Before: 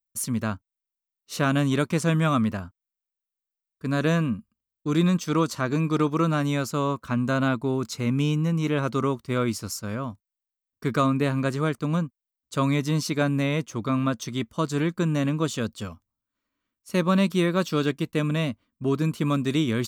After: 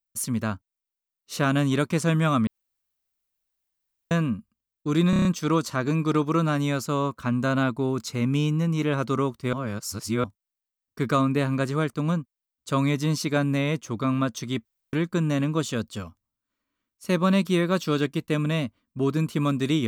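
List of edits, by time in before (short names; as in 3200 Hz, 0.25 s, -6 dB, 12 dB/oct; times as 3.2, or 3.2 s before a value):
2.47–4.11 room tone
5.1 stutter 0.03 s, 6 plays
9.38–10.09 reverse
14.5–14.78 room tone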